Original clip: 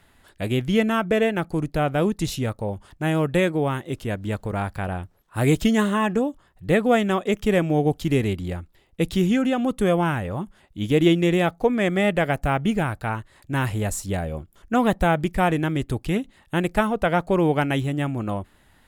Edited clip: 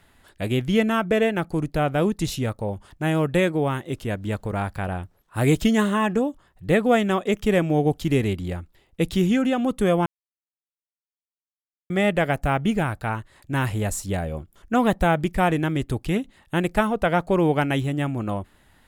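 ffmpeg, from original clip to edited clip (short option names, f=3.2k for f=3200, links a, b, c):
-filter_complex "[0:a]asplit=3[a][b][c];[a]atrim=end=10.06,asetpts=PTS-STARTPTS,afade=t=out:st=10.056:d=0.004:c=hsin[d];[b]atrim=start=10.06:end=11.9,asetpts=PTS-STARTPTS,volume=0[e];[c]atrim=start=11.9,asetpts=PTS-STARTPTS,afade=t=in:d=0.004:c=hsin[f];[d][e][f]concat=n=3:v=0:a=1"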